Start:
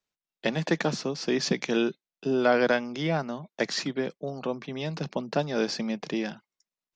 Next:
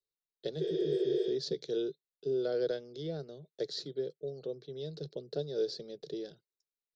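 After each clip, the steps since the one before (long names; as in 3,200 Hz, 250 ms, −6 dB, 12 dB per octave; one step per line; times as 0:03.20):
healed spectral selection 0:00.63–0:01.26, 340–7,500 Hz after
drawn EQ curve 150 Hz 0 dB, 220 Hz −17 dB, 430 Hz +8 dB, 990 Hz −25 dB, 1,500 Hz −13 dB, 2,500 Hz −22 dB, 3,900 Hz +5 dB, 6,200 Hz −8 dB, 8,900 Hz −5 dB
level −8.5 dB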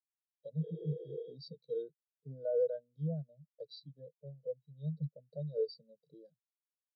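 comb filter 1.3 ms, depth 97%
brickwall limiter −29.5 dBFS, peak gain reduction 5.5 dB
every bin expanded away from the loudest bin 2.5 to 1
level +6 dB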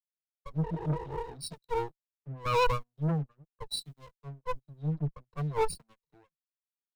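lower of the sound and its delayed copy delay 0.75 ms
leveller curve on the samples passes 3
multiband upward and downward expander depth 100%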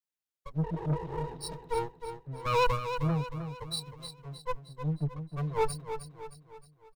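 repeating echo 311 ms, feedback 46%, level −9 dB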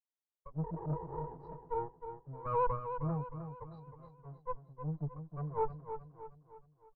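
transistor ladder low-pass 1,300 Hz, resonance 30%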